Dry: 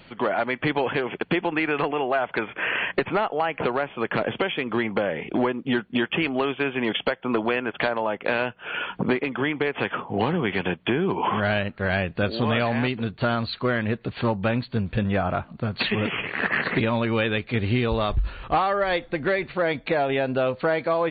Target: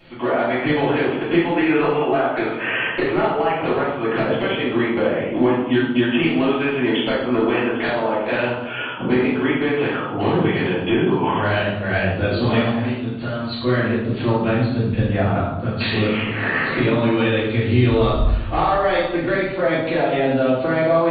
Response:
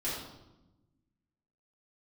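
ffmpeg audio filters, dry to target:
-filter_complex "[0:a]asettb=1/sr,asplit=3[s0][s1][s2];[s0]atrim=end=12.584[s3];[s1]atrim=start=12.58:end=13.49,asetpts=PTS-STARTPTS,afade=t=in:d=0.004:c=qsin,afade=t=out:st=0.906:d=0.004:c=qsin,acompressor=threshold=0.0316:ratio=2.5[s4];[s2]atrim=start=13.486[s5];[s3][s4]acrossfade=d=0.004:c1=hsin:c2=qsin[s6];[s6][s5]acrossfade=d=0.004:c1=qsin:c2=hsin[s7];[1:a]atrim=start_sample=2205[s8];[s7][s8]afir=irnorm=-1:irlink=0,volume=0.841"

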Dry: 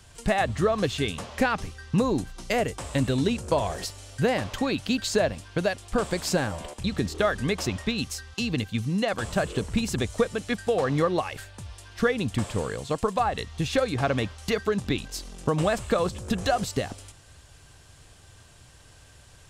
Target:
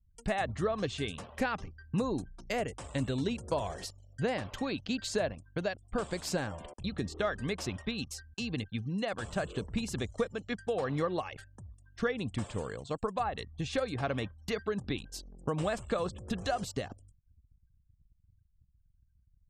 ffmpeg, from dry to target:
-af "afftfilt=real='re*gte(hypot(re,im),0.00631)':imag='im*gte(hypot(re,im),0.00631)':win_size=1024:overlap=0.75,anlmdn=0.158,volume=0.398"

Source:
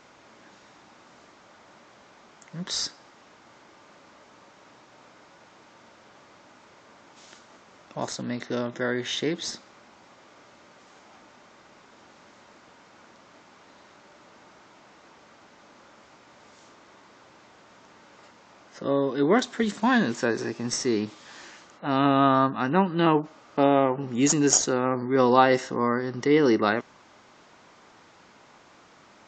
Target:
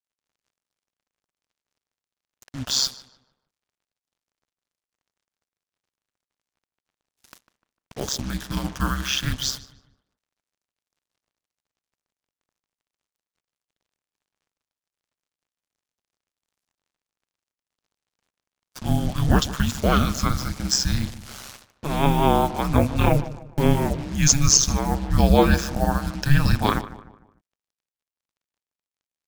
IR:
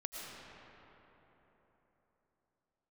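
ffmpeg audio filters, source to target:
-filter_complex "[0:a]afreqshift=-370,acrusher=bits=6:mix=0:aa=0.5,highshelf=f=5100:g=9.5,agate=range=0.0708:threshold=0.00282:ratio=16:detection=peak,aeval=exprs='val(0)*sin(2*PI*67*n/s)':c=same,asplit=2[s0][s1];[s1]adelay=150,lowpass=f=2300:p=1,volume=0.178,asplit=2[s2][s3];[s3]adelay=150,lowpass=f=2300:p=1,volume=0.42,asplit=2[s4][s5];[s5]adelay=150,lowpass=f=2300:p=1,volume=0.42,asplit=2[s6][s7];[s7]adelay=150,lowpass=f=2300:p=1,volume=0.42[s8];[s2][s4][s6][s8]amix=inputs=4:normalize=0[s9];[s0][s9]amix=inputs=2:normalize=0,alimiter=level_in=2.11:limit=0.891:release=50:level=0:latency=1,volume=0.891"

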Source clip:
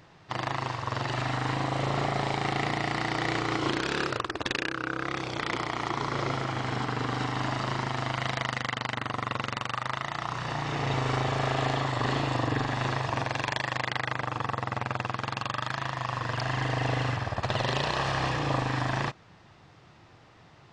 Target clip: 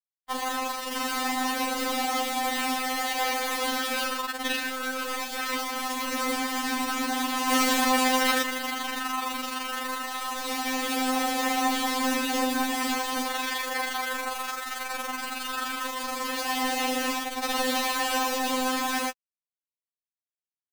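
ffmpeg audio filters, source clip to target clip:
-filter_complex "[0:a]acrusher=bits=4:mix=0:aa=0.000001,asettb=1/sr,asplit=3[s0][s1][s2];[s0]atrim=end=7.494[s3];[s1]atrim=start=7.49:end=8.42,asetpts=PTS-STARTPTS,afade=t=in:d=0.004:c=qsin,afade=t=out:st=0.926:d=0.004:c=qsin,acontrast=64[s4];[s2]atrim=start=8.416[s5];[s3][s4]acrossfade=d=0.004:c1=hsin:c2=qsin[s6];[s6][s5]acrossfade=d=0.004:c1=qsin:c2=hsin,asettb=1/sr,asplit=3[s7][s8][s9];[s7]atrim=end=14.334[s10];[s8]atrim=start=14.33:end=14.92,asetpts=PTS-STARTPTS,afade=t=in:d=0.004:c=qsin,afade=t=out:st=0.586:d=0.004:c=qsin,equalizer=f=150:w=0.4:g=-11[s11];[s9]atrim=start=14.916[s12];[s10][s11]acrossfade=d=0.004:c1=hsin:c2=qsin[s13];[s13][s12]acrossfade=d=0.004:c1=qsin:c2=hsin,afftfilt=real='re*3.46*eq(mod(b,12),0)':imag='im*3.46*eq(mod(b,12),0)':win_size=2048:overlap=0.75,volume=1.5"

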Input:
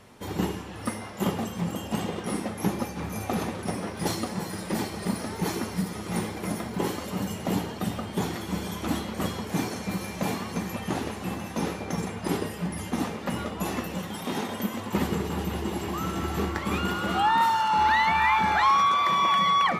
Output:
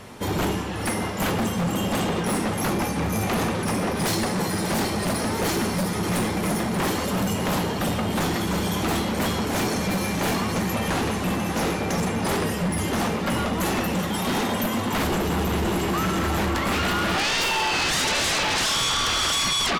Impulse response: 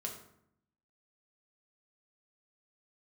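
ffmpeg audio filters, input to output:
-af "aecho=1:1:585:0.237,aeval=exprs='0.237*sin(PI/2*5.01*val(0)/0.237)':c=same,volume=0.422"

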